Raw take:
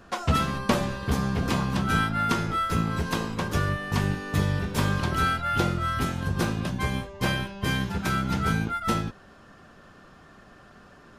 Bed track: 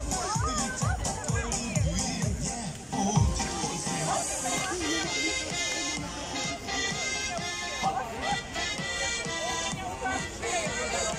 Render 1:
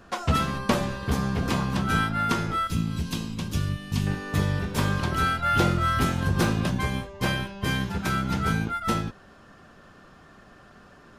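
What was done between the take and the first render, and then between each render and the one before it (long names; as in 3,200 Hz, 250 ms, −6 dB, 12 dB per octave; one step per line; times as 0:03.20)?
0:02.67–0:04.07: flat-topped bell 870 Hz −11.5 dB 2.7 octaves
0:05.42–0:06.81: leveller curve on the samples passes 1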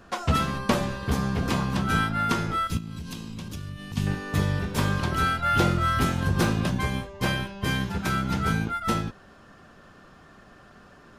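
0:02.77–0:03.97: downward compressor, threshold −32 dBFS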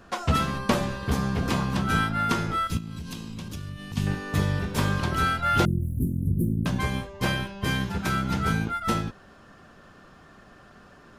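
0:05.65–0:06.66: inverse Chebyshev band-stop filter 920–4,900 Hz, stop band 60 dB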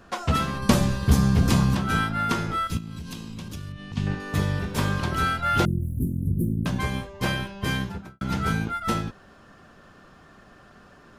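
0:00.62–0:01.75: bass and treble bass +9 dB, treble +8 dB
0:03.72–0:04.20: high-frequency loss of the air 82 metres
0:07.75–0:08.21: fade out and dull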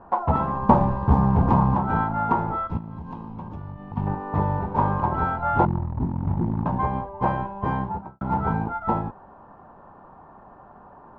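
floating-point word with a short mantissa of 2 bits
low-pass with resonance 900 Hz, resonance Q 7.5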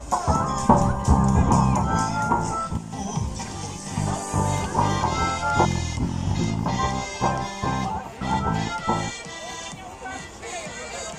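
mix in bed track −3.5 dB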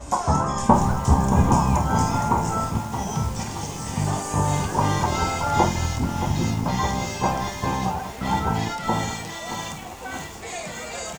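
on a send: ambience of single reflections 27 ms −10.5 dB, 48 ms −11 dB
on the sum: feedback echo at a low word length 624 ms, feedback 55%, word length 6 bits, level −9.5 dB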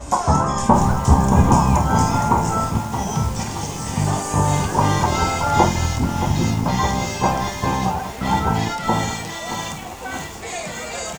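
level +4 dB
brickwall limiter −1 dBFS, peak gain reduction 3 dB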